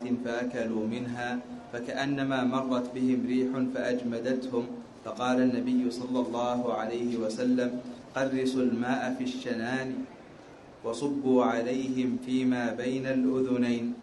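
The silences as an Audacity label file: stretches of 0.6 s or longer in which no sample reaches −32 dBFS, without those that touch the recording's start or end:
10.040000	10.850000	silence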